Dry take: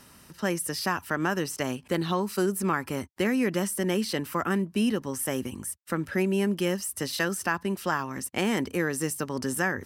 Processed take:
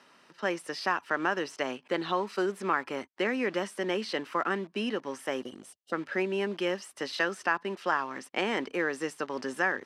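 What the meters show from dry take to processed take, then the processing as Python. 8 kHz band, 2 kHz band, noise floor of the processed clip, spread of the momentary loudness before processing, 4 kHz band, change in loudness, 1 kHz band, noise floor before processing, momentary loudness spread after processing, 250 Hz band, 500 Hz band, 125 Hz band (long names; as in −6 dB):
−14.0 dB, 0.0 dB, −62 dBFS, 5 LU, −2.5 dB, −3.0 dB, +0.5 dB, −54 dBFS, 6 LU, −7.0 dB, −1.5 dB, −13.0 dB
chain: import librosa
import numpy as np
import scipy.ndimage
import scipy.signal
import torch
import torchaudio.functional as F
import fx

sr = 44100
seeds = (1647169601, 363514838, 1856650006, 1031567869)

p1 = fx.spec_box(x, sr, start_s=5.43, length_s=0.5, low_hz=770.0, high_hz=2800.0, gain_db=-28)
p2 = fx.quant_dither(p1, sr, seeds[0], bits=6, dither='none')
p3 = p1 + (p2 * librosa.db_to_amplitude(-12.0))
p4 = fx.bandpass_edges(p3, sr, low_hz=380.0, high_hz=3800.0)
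y = p4 * librosa.db_to_amplitude(-1.5)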